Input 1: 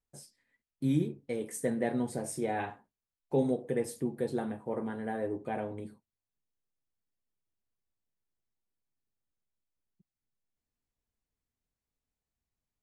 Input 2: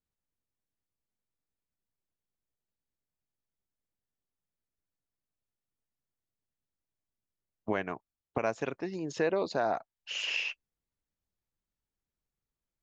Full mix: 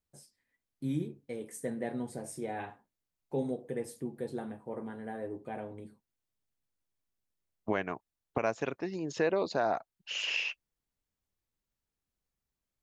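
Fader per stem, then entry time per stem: -5.0 dB, 0.0 dB; 0.00 s, 0.00 s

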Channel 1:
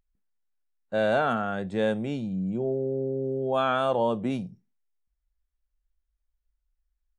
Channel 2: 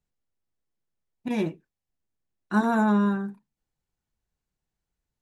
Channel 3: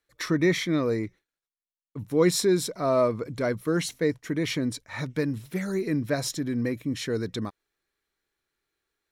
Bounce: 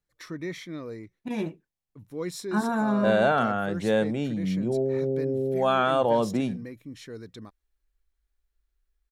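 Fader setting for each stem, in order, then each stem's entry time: +2.0 dB, -3.5 dB, -12.0 dB; 2.10 s, 0.00 s, 0.00 s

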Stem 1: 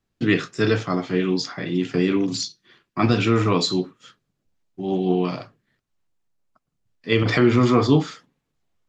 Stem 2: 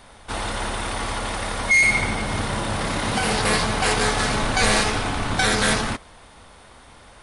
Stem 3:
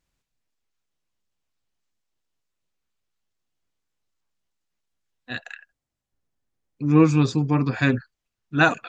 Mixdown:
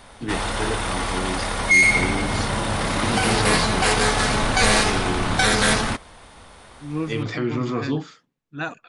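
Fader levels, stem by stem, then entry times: -8.5 dB, +1.5 dB, -11.5 dB; 0.00 s, 0.00 s, 0.00 s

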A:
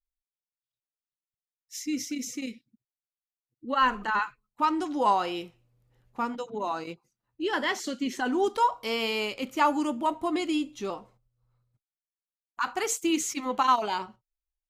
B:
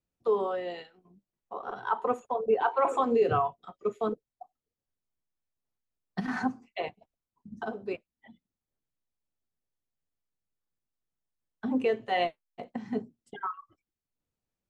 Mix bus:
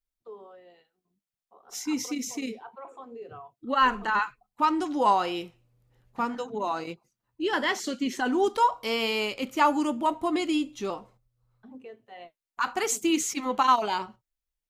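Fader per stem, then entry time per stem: +1.5 dB, -18.0 dB; 0.00 s, 0.00 s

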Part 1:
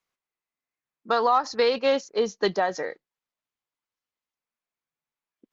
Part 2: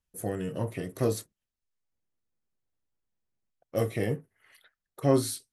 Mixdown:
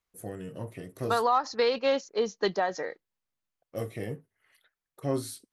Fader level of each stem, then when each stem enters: -3.5 dB, -6.5 dB; 0.00 s, 0.00 s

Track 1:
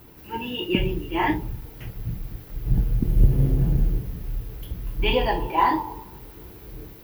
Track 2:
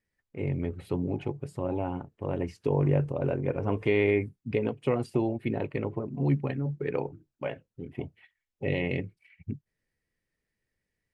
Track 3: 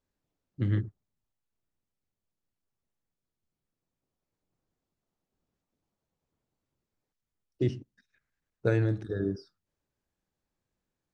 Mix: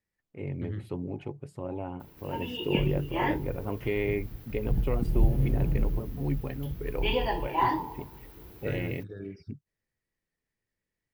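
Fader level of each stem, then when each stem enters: -6.0 dB, -5.0 dB, -9.5 dB; 2.00 s, 0.00 s, 0.00 s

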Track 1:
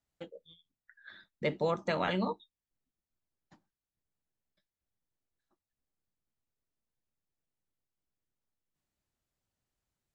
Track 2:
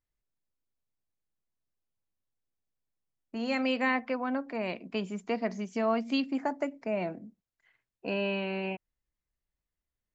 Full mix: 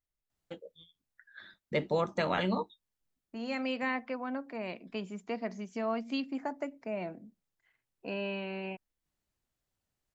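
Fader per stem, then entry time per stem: +1.0 dB, -5.0 dB; 0.30 s, 0.00 s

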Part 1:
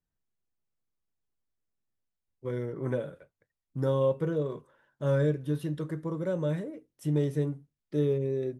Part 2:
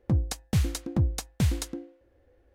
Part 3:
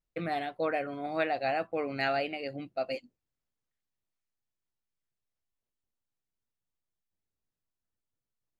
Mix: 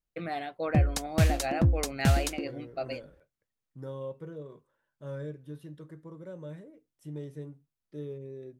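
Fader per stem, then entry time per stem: -12.5 dB, +1.0 dB, -2.0 dB; 0.00 s, 0.65 s, 0.00 s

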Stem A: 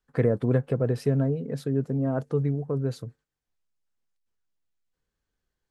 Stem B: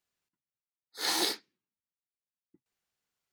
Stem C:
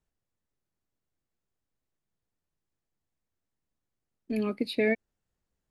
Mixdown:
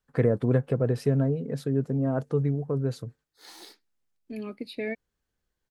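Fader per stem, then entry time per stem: 0.0 dB, -18.5 dB, -6.5 dB; 0.00 s, 2.40 s, 0.00 s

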